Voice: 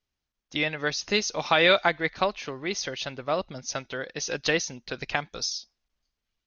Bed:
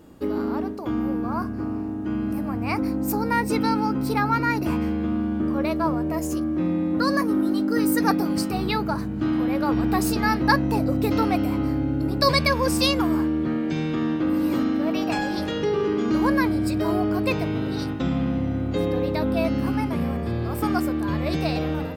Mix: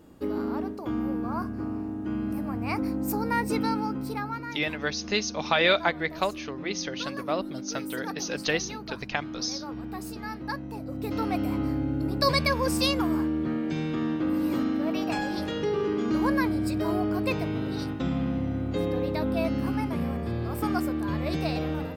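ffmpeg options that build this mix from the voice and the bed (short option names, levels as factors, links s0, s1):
-filter_complex "[0:a]adelay=4000,volume=0.794[s0];[1:a]volume=2.11,afade=t=out:st=3.57:d=0.9:silence=0.298538,afade=t=in:st=10.84:d=0.67:silence=0.298538[s1];[s0][s1]amix=inputs=2:normalize=0"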